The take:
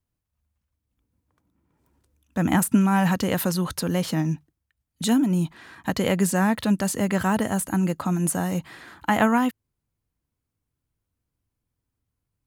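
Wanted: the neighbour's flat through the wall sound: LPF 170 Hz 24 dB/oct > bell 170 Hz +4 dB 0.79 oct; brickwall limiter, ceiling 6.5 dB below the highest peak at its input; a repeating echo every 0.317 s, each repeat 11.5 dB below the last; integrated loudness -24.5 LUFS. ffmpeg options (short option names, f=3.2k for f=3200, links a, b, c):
-af "alimiter=limit=-14dB:level=0:latency=1,lowpass=f=170:w=0.5412,lowpass=f=170:w=1.3066,equalizer=f=170:t=o:w=0.79:g=4,aecho=1:1:317|634|951:0.266|0.0718|0.0194,volume=4dB"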